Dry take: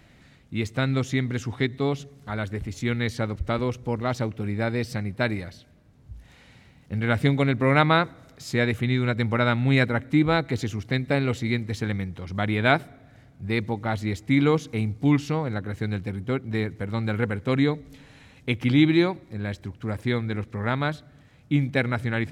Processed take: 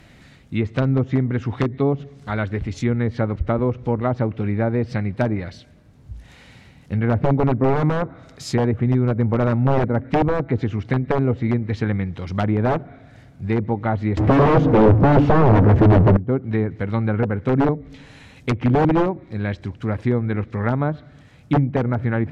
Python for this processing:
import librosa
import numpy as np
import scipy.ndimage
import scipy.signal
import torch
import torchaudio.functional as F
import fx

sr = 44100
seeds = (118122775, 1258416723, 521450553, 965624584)

y = fx.power_curve(x, sr, exponent=0.35, at=(14.17, 16.17))
y = (np.mod(10.0 ** (13.5 / 20.0) * y + 1.0, 2.0) - 1.0) / 10.0 ** (13.5 / 20.0)
y = fx.env_lowpass_down(y, sr, base_hz=830.0, full_db=-20.5)
y = y * 10.0 ** (6.0 / 20.0)